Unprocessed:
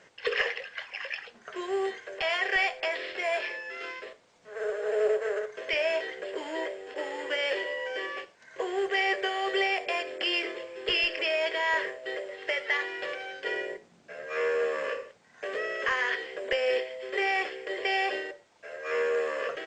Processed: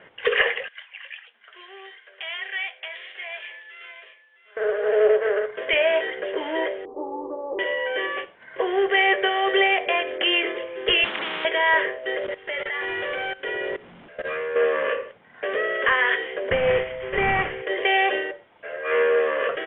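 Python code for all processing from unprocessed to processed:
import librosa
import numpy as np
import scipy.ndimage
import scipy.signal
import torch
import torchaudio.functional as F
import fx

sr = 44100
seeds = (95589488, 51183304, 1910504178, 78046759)

y = fx.chain(x, sr, fx.highpass(hz=130.0, slope=12),
    fx.differentiator(),
    fx.echo_single(ms=658, db=-14.0), at=(0.68, 4.57))
y = fx.chain(y, sr, fx.cheby_ripple(hz=1200.0, ripple_db=9),
    fx.low_shelf(hz=160.0, db=11.0), at=(6.85, 7.59))
y = fx.chain(y, sr, fx.highpass(hz=200.0, slope=24),
    fx.spectral_comp(ratio=10.0), at=(11.04, 11.45))
y = fx.chain(y, sr, fx.zero_step(step_db=-36.5),
    fx.level_steps(step_db=18), at=(12.18, 14.56))
y = fx.chain(y, sr, fx.cvsd(bps=16000),
    fx.low_shelf_res(hz=210.0, db=6.5, q=1.5), at=(16.5, 17.62))
y = scipy.signal.sosfilt(scipy.signal.butter(16, 3400.0, 'lowpass', fs=sr, output='sos'), y)
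y = fx.notch(y, sr, hz=2600.0, q=23.0)
y = F.gain(torch.from_numpy(y), 8.0).numpy()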